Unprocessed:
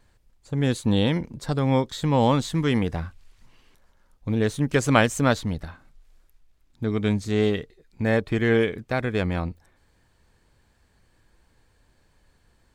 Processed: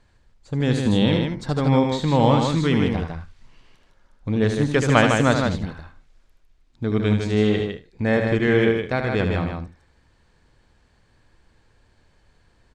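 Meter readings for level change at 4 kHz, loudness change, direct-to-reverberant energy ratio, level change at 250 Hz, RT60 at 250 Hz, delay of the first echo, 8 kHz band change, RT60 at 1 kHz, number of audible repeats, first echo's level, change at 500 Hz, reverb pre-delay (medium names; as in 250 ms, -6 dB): +3.0 dB, +3.0 dB, no reverb, +3.5 dB, no reverb, 76 ms, -0.5 dB, no reverb, 3, -7.0 dB, +3.0 dB, no reverb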